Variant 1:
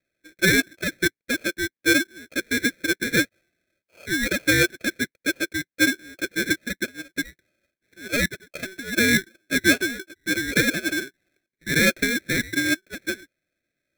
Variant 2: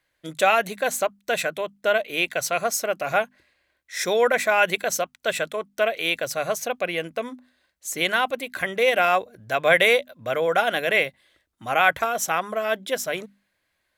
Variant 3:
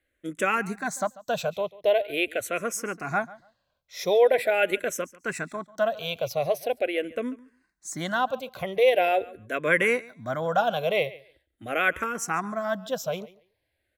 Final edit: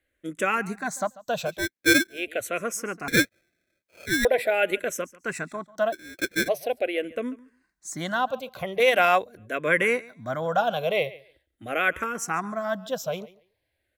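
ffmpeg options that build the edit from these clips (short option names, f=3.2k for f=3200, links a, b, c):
-filter_complex "[0:a]asplit=3[a][b][c];[2:a]asplit=5[d][e][f][g][h];[d]atrim=end=1.68[i];[a]atrim=start=1.44:end=2.33[j];[e]atrim=start=2.09:end=3.082[k];[b]atrim=start=3.078:end=4.252[l];[f]atrim=start=4.248:end=5.94[m];[c]atrim=start=5.92:end=6.49[n];[g]atrim=start=6.47:end=8.802[o];[1:a]atrim=start=8.798:end=9.372[p];[h]atrim=start=9.368[q];[i][j]acrossfade=d=0.24:c1=tri:c2=tri[r];[r][k]acrossfade=d=0.24:c1=tri:c2=tri[s];[s][l]acrossfade=d=0.004:c1=hsin:c2=hsin[t];[t][m]acrossfade=d=0.004:c1=hsin:c2=hsin[u];[u][n]acrossfade=d=0.02:c1=tri:c2=tri[v];[v][o]acrossfade=d=0.02:c1=tri:c2=tri[w];[w][p]acrossfade=d=0.004:c1=hsin:c2=hsin[x];[x][q]acrossfade=d=0.004:c1=hsin:c2=hsin"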